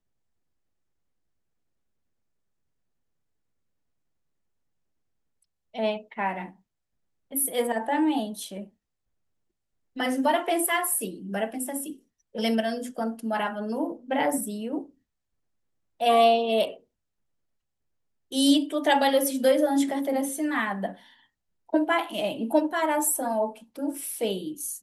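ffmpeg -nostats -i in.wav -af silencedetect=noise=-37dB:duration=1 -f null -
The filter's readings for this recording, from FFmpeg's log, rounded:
silence_start: 0.00
silence_end: 5.75 | silence_duration: 5.75
silence_start: 8.64
silence_end: 9.96 | silence_duration: 1.33
silence_start: 14.83
silence_end: 16.00 | silence_duration: 1.17
silence_start: 16.74
silence_end: 18.32 | silence_duration: 1.58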